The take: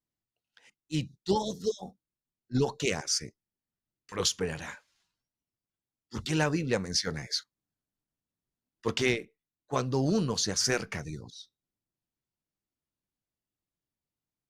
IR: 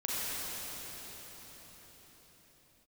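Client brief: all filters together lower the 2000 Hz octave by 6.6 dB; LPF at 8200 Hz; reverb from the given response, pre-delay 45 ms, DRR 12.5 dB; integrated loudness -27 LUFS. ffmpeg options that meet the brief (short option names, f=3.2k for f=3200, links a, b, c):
-filter_complex "[0:a]lowpass=8.2k,equalizer=f=2k:t=o:g=-8.5,asplit=2[a][b];[1:a]atrim=start_sample=2205,adelay=45[c];[b][c]afir=irnorm=-1:irlink=0,volume=-20dB[d];[a][d]amix=inputs=2:normalize=0,volume=4.5dB"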